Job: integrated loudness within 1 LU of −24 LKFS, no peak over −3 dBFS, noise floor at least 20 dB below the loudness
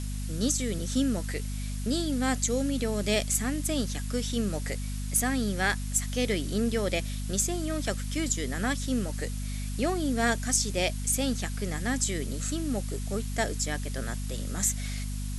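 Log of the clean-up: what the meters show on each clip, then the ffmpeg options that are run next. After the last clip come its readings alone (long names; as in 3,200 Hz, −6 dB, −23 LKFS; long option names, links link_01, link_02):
mains hum 50 Hz; hum harmonics up to 250 Hz; level of the hum −31 dBFS; background noise floor −33 dBFS; target noise floor −50 dBFS; integrated loudness −29.5 LKFS; sample peak −10.5 dBFS; target loudness −24.0 LKFS
→ -af "bandreject=frequency=50:width_type=h:width=6,bandreject=frequency=100:width_type=h:width=6,bandreject=frequency=150:width_type=h:width=6,bandreject=frequency=200:width_type=h:width=6,bandreject=frequency=250:width_type=h:width=6"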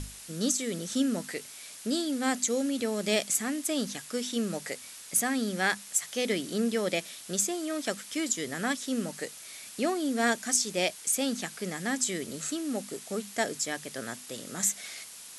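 mains hum none found; background noise floor −46 dBFS; target noise floor −51 dBFS
→ -af "afftdn=noise_reduction=6:noise_floor=-46"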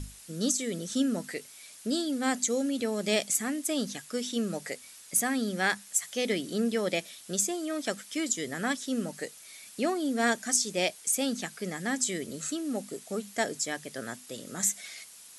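background noise floor −51 dBFS; integrated loudness −30.5 LKFS; sample peak −11.5 dBFS; target loudness −24.0 LKFS
→ -af "volume=6.5dB"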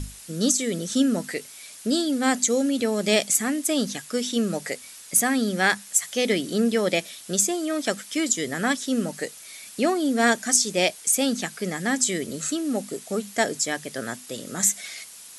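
integrated loudness −24.0 LKFS; sample peak −5.0 dBFS; background noise floor −44 dBFS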